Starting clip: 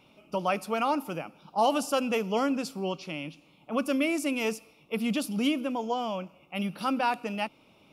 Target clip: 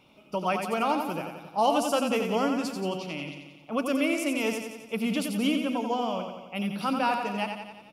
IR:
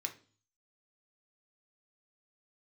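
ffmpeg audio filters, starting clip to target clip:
-af "aecho=1:1:89|178|267|356|445|534|623|712:0.501|0.296|0.174|0.103|0.0607|0.0358|0.0211|0.0125"

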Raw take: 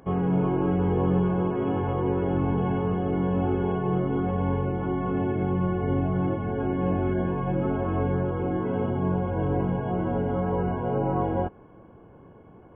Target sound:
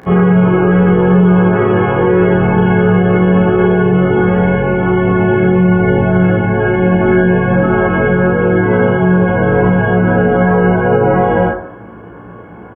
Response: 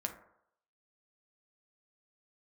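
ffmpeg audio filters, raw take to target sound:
-filter_complex "[0:a]highpass=52,equalizer=frequency=1700:width_type=o:width=1:gain=10,asplit=2[link_01][link_02];[link_02]adelay=17,volume=-4dB[link_03];[link_01][link_03]amix=inputs=2:normalize=0,asplit=2[link_04][link_05];[1:a]atrim=start_sample=2205,adelay=35[link_06];[link_05][link_06]afir=irnorm=-1:irlink=0,volume=0.5dB[link_07];[link_04][link_07]amix=inputs=2:normalize=0,alimiter=level_in=12dB:limit=-1dB:release=50:level=0:latency=1,volume=-1dB"

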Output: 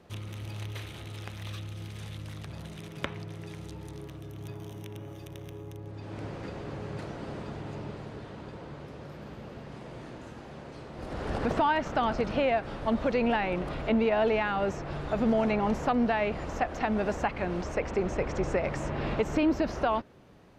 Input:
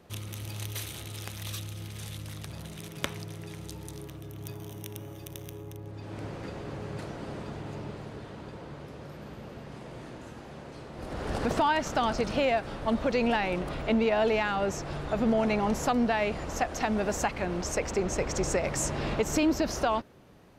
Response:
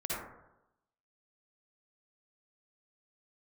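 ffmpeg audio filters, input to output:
-filter_complex "[0:a]highshelf=frequency=10000:gain=-11,acrossover=split=3400[link_01][link_02];[link_02]acompressor=threshold=-54dB:ratio=6[link_03];[link_01][link_03]amix=inputs=2:normalize=0"

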